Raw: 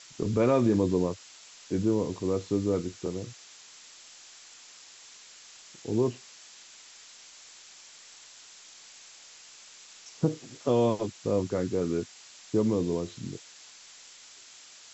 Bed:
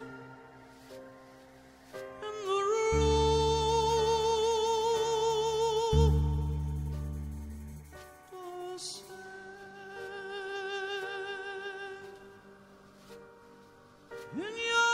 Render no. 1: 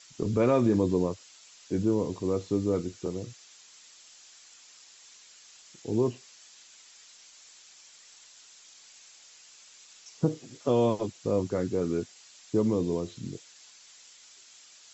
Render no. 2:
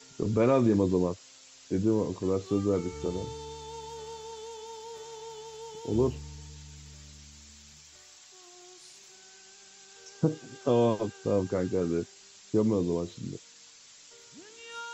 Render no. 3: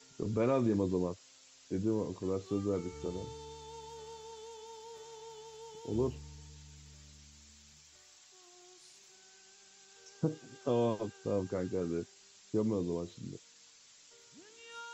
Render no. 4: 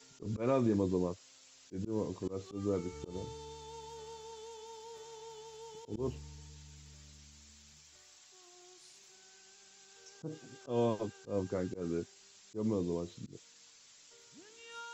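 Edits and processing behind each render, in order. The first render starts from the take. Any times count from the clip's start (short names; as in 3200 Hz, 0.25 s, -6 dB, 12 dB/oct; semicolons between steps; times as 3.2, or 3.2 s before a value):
denoiser 6 dB, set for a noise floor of -52 dBFS
add bed -14.5 dB
gain -6.5 dB
auto swell 0.125 s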